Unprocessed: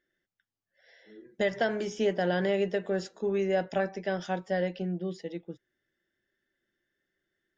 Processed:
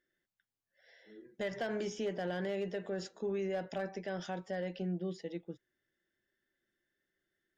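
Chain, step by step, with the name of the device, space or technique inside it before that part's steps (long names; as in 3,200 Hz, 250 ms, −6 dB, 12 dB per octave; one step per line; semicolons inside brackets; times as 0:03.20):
clipper into limiter (hard clipping −19.5 dBFS, distortion −25 dB; brickwall limiter −25.5 dBFS, peak gain reduction 6 dB)
level −3.5 dB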